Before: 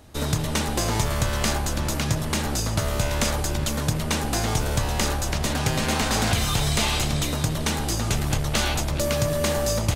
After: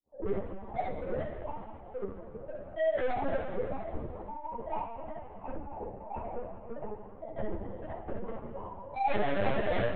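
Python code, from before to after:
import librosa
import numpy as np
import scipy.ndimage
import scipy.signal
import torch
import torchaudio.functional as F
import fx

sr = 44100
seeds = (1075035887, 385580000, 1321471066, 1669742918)

p1 = fx.sine_speech(x, sr)
p2 = scipy.signal.sosfilt(scipy.signal.bessel(2, 230.0, 'highpass', norm='mag', fs=sr, output='sos'), p1)
p3 = fx.hum_notches(p2, sr, base_hz=60, count=7)
p4 = fx.rider(p3, sr, range_db=4, speed_s=2.0)
p5 = p3 + F.gain(torch.from_numpy(p4), -2.0).numpy()
p6 = np.clip(10.0 ** (12.0 / 20.0) * p5, -1.0, 1.0) / 10.0 ** (12.0 / 20.0)
p7 = scipy.signal.sosfilt(scipy.signal.ellip(4, 1.0, 60, 560.0, 'lowpass', fs=sr, output='sos'), p6)
p8 = fx.granulator(p7, sr, seeds[0], grain_ms=122.0, per_s=22.0, spray_ms=100.0, spread_st=7)
p9 = 10.0 ** (-27.5 / 20.0) * np.tanh(p8 / 10.0 ** (-27.5 / 20.0))
p10 = fx.room_early_taps(p9, sr, ms=(16, 44, 66, 79), db=(-13.0, -6.5, -5.0, -15.0))
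p11 = fx.rev_schroeder(p10, sr, rt60_s=2.5, comb_ms=26, drr_db=4.0)
p12 = fx.lpc_vocoder(p11, sr, seeds[1], excitation='pitch_kept', order=8)
y = fx.ensemble(p12, sr)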